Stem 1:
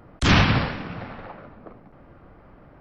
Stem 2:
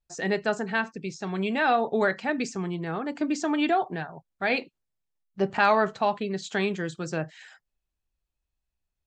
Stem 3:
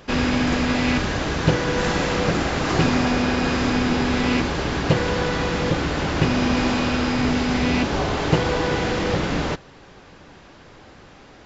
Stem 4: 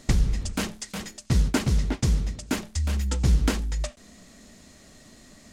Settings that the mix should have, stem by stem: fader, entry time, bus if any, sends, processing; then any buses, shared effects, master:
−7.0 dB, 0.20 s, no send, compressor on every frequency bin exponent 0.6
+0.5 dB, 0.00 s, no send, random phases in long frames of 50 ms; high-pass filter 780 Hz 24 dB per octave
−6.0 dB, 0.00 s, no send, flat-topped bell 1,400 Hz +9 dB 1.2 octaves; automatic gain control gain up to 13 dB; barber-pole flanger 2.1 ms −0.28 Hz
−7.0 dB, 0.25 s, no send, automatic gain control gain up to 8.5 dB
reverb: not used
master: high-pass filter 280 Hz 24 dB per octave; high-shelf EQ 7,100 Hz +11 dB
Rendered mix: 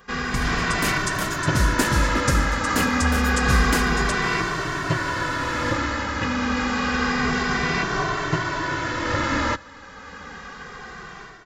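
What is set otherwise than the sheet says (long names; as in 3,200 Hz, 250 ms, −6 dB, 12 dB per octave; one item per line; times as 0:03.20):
stem 1 −7.0 dB → −16.5 dB
stem 2: muted
master: missing high-pass filter 280 Hz 24 dB per octave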